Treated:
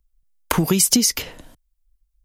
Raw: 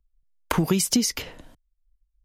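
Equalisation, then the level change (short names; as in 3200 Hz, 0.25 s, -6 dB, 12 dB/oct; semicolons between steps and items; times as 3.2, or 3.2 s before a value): high shelf 6100 Hz +8.5 dB; +3.0 dB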